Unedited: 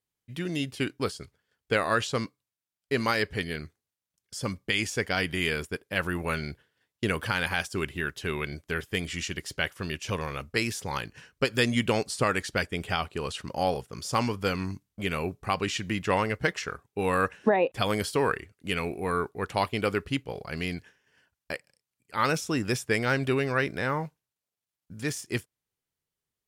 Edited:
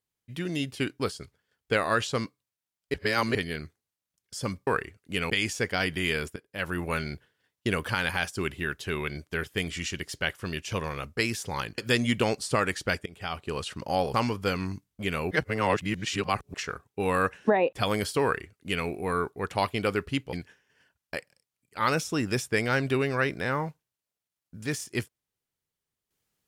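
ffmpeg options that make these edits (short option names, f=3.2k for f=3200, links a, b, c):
-filter_complex "[0:a]asplit=12[a][b][c][d][e][f][g][h][i][j][k][l];[a]atrim=end=2.942[m];[b]atrim=start=2.938:end=3.352,asetpts=PTS-STARTPTS,areverse[n];[c]atrim=start=3.348:end=4.672[o];[d]atrim=start=18.218:end=18.852[p];[e]atrim=start=4.668:end=5.73,asetpts=PTS-STARTPTS,afade=t=out:st=1.058:d=0.004:c=hsin:silence=0.158489[q];[f]atrim=start=5.73:end=11.152,asetpts=PTS-STARTPTS,afade=t=in:d=0.44:silence=0.158489[r];[g]atrim=start=11.458:end=12.74,asetpts=PTS-STARTPTS,afade=t=out:st=1.278:d=0.004:c=hsin:silence=0.0707946[s];[h]atrim=start=12.74:end=13.822,asetpts=PTS-STARTPTS,afade=t=in:d=0.44:silence=0.0707946[t];[i]atrim=start=14.128:end=15.302[u];[j]atrim=start=15.298:end=16.532,asetpts=PTS-STARTPTS,areverse[v];[k]atrim=start=16.528:end=20.322[w];[l]atrim=start=20.698[x];[m][n]acrossfade=d=0.004:c1=hsin:c2=hsin[y];[y][o]acrossfade=d=0.004:c1=hsin:c2=hsin[z];[z][p]acrossfade=d=0.004:c1=hsin:c2=hsin[aa];[q][r]concat=n=2:v=0:a=1[ab];[aa][ab]acrossfade=d=0.004:c1=hsin:c2=hsin[ac];[s][t]concat=n=2:v=0:a=1[ad];[ac][ad]acrossfade=d=0.004:c1=hsin:c2=hsin[ae];[ae][u]acrossfade=d=0.004:c1=hsin:c2=hsin[af];[af][v]acrossfade=d=0.004:c1=hsin:c2=hsin[ag];[ag][w]acrossfade=d=0.004:c1=hsin:c2=hsin[ah];[ah][x]acrossfade=d=0.004:c1=hsin:c2=hsin"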